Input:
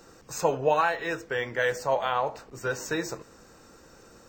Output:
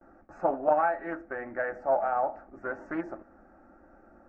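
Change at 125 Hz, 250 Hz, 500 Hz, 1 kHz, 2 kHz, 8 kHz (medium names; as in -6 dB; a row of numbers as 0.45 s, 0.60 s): -12.5 dB, -0.5 dB, -2.0 dB, -0.5 dB, -6.5 dB, under -35 dB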